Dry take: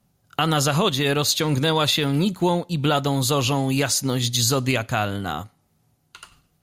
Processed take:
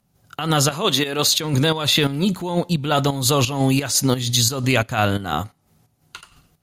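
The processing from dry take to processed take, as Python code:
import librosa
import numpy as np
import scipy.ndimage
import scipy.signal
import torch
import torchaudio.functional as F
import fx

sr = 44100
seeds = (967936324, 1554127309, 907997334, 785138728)

p1 = fx.over_compress(x, sr, threshold_db=-23.0, ratio=-0.5)
p2 = x + (p1 * 10.0 ** (-1.0 / 20.0))
p3 = fx.highpass(p2, sr, hz=200.0, slope=12, at=(0.71, 1.27))
y = fx.volume_shaper(p3, sr, bpm=87, per_beat=2, depth_db=-10, release_ms=152.0, shape='slow start')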